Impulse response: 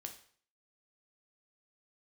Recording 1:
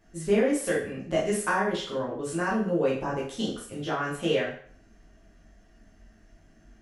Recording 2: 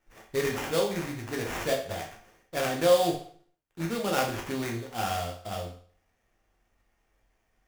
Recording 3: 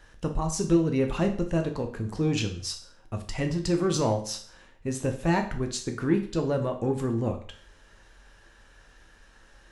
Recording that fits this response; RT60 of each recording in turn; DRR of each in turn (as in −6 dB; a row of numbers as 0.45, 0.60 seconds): 3; 0.50, 0.50, 0.50 seconds; −6.0, 0.0, 4.5 decibels